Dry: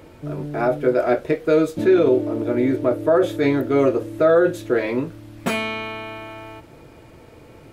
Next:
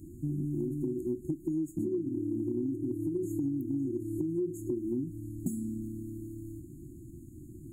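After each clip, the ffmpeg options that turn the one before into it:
-af "afftfilt=real='re*(1-between(b*sr/4096,370,6500))':imag='im*(1-between(b*sr/4096,370,6500))':win_size=4096:overlap=0.75,acompressor=threshold=-29dB:ratio=12"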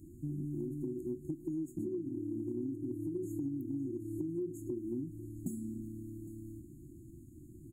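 -af "aecho=1:1:808:0.133,volume=-5.5dB"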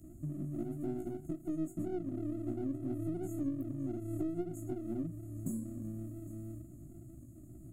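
-filter_complex "[0:a]flanger=delay=15.5:depth=3.3:speed=2.1,acrossover=split=330|1100[a][b][c];[b]aeval=exprs='max(val(0),0)':c=same[d];[a][d][c]amix=inputs=3:normalize=0,volume=5dB"

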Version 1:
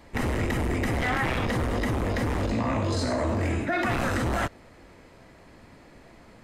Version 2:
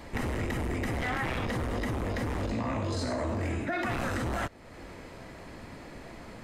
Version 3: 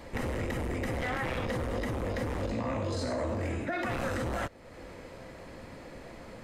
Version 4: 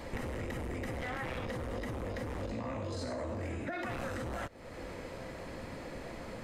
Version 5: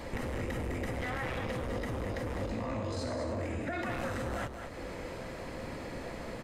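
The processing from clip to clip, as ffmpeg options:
-af "acompressor=threshold=-44dB:ratio=2,volume=6dB"
-af "equalizer=f=520:t=o:w=0.24:g=7.5,volume=-2dB"
-af "acompressor=threshold=-37dB:ratio=10,volume=2.5dB"
-filter_complex "[0:a]asplit=2[a][b];[b]aeval=exprs='clip(val(0),-1,0.0178)':c=same,volume=-11.5dB[c];[a][c]amix=inputs=2:normalize=0,aecho=1:1:204:0.422"

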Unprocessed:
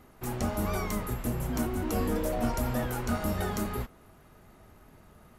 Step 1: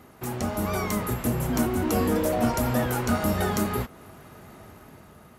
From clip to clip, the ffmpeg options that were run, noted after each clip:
-filter_complex "[0:a]asplit=2[a][b];[b]acompressor=threshold=-39dB:ratio=6,volume=-0.5dB[c];[a][c]amix=inputs=2:normalize=0,highpass=79,dynaudnorm=f=220:g=7:m=4.5dB"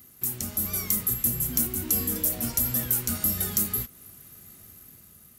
-af "highshelf=f=12k:g=11,crystalizer=i=2.5:c=0,equalizer=f=770:t=o:w=2.2:g=-13,volume=-5.5dB"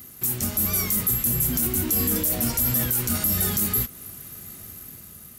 -af "alimiter=limit=-20dB:level=0:latency=1:release=22,asoftclip=type=tanh:threshold=-22.5dB,volume=8.5dB"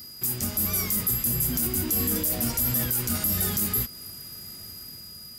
-af "aeval=exprs='val(0)+0.01*sin(2*PI*4900*n/s)':c=same,volume=-2.5dB"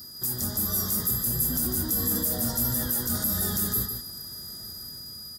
-filter_complex "[0:a]asuperstop=centerf=2500:order=12:qfactor=2,asplit=2[a][b];[b]asoftclip=type=tanh:threshold=-30.5dB,volume=-8.5dB[c];[a][c]amix=inputs=2:normalize=0,aecho=1:1:150:0.473,volume=-3dB"

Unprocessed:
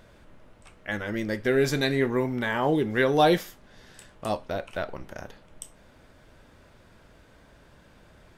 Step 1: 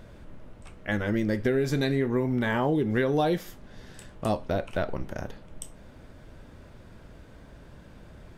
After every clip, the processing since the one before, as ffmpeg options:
-af "lowshelf=f=470:g=8.5,acompressor=threshold=-21dB:ratio=12"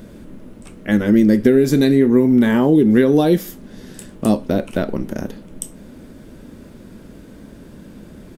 -af "firequalizer=gain_entry='entry(110,0);entry(210,13);entry(710,0);entry(11000,12)':delay=0.05:min_phase=1,volume=3.5dB"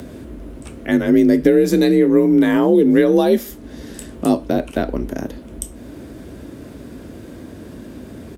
-filter_complex "[0:a]asplit=2[a][b];[b]acompressor=mode=upward:threshold=-22dB:ratio=2.5,volume=-2.5dB[c];[a][c]amix=inputs=2:normalize=0,afreqshift=43,volume=-5dB"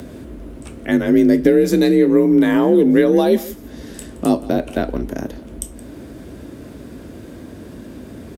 -af "aecho=1:1:171:0.119"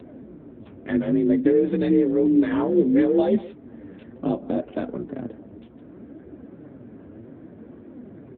-filter_complex "[0:a]acrossover=split=2200[a][b];[b]acrusher=bits=5:mix=0:aa=0.000001[c];[a][c]amix=inputs=2:normalize=0,flanger=delay=2.1:depth=8.7:regen=38:speed=0.64:shape=triangular,volume=-2.5dB" -ar 8000 -c:a libopencore_amrnb -b:a 7950

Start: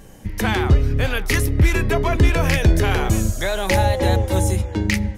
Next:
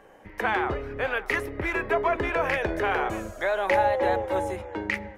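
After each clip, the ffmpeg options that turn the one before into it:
-filter_complex "[0:a]acrossover=split=390 2300:gain=0.0794 1 0.0891[a][b][c];[a][b][c]amix=inputs=3:normalize=0"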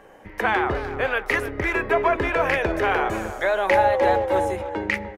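-filter_complex "[0:a]asplit=2[a][b];[b]adelay=300,highpass=300,lowpass=3.4k,asoftclip=type=hard:threshold=-20dB,volume=-12dB[c];[a][c]amix=inputs=2:normalize=0,volume=4dB"

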